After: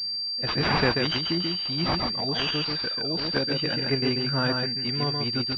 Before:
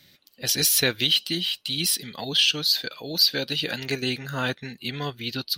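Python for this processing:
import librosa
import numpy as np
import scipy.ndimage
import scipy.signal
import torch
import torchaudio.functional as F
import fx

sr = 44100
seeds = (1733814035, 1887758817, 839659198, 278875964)

p1 = fx.low_shelf(x, sr, hz=350.0, db=3.5)
p2 = p1 + fx.echo_single(p1, sr, ms=137, db=-4.0, dry=0)
y = fx.pwm(p2, sr, carrier_hz=4700.0)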